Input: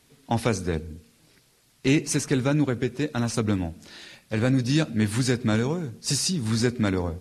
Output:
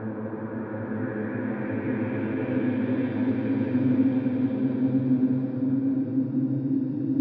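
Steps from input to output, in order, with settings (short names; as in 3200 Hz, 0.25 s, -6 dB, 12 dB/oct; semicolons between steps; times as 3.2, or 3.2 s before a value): HPF 91 Hz; high shelf 3700 Hz -6 dB; small resonant body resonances 280/940 Hz, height 12 dB, ringing for 40 ms; compressor 2:1, threshold -33 dBFS, peak gain reduction 13.5 dB; treble ducked by the level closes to 750 Hz, closed at -25 dBFS; Paulstretch 18×, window 0.50 s, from 4.27; low-pass sweep 1200 Hz -> 4900 Hz, 0.43–3.96; bloom reverb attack 1.46 s, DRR 3 dB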